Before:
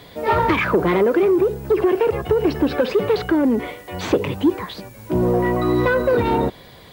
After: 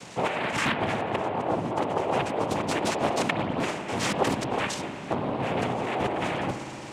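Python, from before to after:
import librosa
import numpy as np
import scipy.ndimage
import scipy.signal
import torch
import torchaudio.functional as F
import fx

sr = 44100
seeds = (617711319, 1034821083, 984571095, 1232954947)

y = fx.hum_notches(x, sr, base_hz=50, count=9)
y = fx.over_compress(y, sr, threshold_db=-24.0, ratio=-1.0)
y = fx.noise_vocoder(y, sr, seeds[0], bands=4)
y = fx.rev_spring(y, sr, rt60_s=3.4, pass_ms=(55,), chirp_ms=75, drr_db=7.5)
y = fx.doppler_dist(y, sr, depth_ms=0.51)
y = y * librosa.db_to_amplitude(-3.5)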